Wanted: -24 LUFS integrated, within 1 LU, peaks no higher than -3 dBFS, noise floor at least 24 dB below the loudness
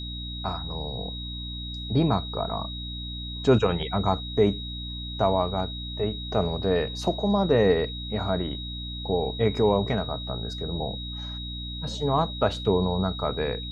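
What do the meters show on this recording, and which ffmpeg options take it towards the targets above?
hum 60 Hz; harmonics up to 300 Hz; hum level -33 dBFS; steady tone 3800 Hz; tone level -36 dBFS; loudness -27.0 LUFS; peak -8.0 dBFS; loudness target -24.0 LUFS
-> -af "bandreject=f=60:t=h:w=4,bandreject=f=120:t=h:w=4,bandreject=f=180:t=h:w=4,bandreject=f=240:t=h:w=4,bandreject=f=300:t=h:w=4"
-af "bandreject=f=3.8k:w=30"
-af "volume=3dB"

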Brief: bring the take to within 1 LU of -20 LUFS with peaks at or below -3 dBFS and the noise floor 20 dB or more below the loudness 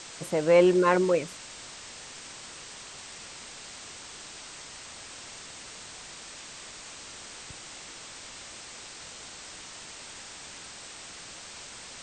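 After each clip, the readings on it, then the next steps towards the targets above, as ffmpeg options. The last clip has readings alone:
noise floor -45 dBFS; noise floor target -53 dBFS; loudness -32.5 LUFS; peak -8.5 dBFS; loudness target -20.0 LUFS
-> -af "afftdn=nr=8:nf=-45"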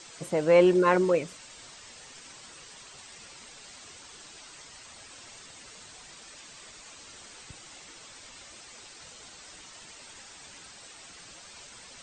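noise floor -49 dBFS; loudness -23.5 LUFS; peak -8.5 dBFS; loudness target -20.0 LUFS
-> -af "volume=3.5dB"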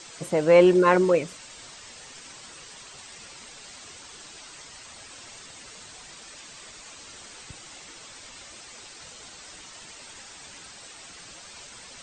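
loudness -20.0 LUFS; peak -5.0 dBFS; noise floor -46 dBFS

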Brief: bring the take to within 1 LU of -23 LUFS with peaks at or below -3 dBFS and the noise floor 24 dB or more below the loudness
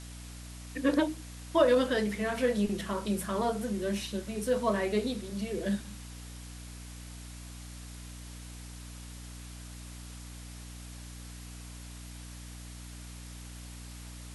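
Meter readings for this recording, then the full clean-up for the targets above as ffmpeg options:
hum 60 Hz; harmonics up to 300 Hz; hum level -43 dBFS; noise floor -45 dBFS; noise floor target -55 dBFS; loudness -30.5 LUFS; peak -12.5 dBFS; loudness target -23.0 LUFS
-> -af "bandreject=f=60:t=h:w=4,bandreject=f=120:t=h:w=4,bandreject=f=180:t=h:w=4,bandreject=f=240:t=h:w=4,bandreject=f=300:t=h:w=4"
-af "afftdn=nr=10:nf=-45"
-af "volume=7.5dB"

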